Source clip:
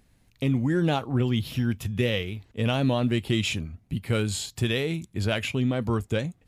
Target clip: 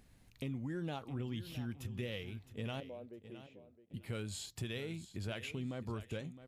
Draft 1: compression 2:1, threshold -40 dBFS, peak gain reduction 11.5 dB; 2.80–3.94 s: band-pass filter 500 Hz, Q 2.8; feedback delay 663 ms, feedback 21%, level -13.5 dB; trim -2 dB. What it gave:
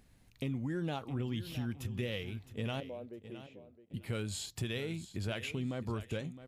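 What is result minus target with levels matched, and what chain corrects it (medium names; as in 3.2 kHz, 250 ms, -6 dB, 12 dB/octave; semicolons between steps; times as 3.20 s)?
compression: peak gain reduction -4 dB
compression 2:1, threshold -48 dBFS, peak gain reduction 15.5 dB; 2.80–3.94 s: band-pass filter 500 Hz, Q 2.8; feedback delay 663 ms, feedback 21%, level -13.5 dB; trim -2 dB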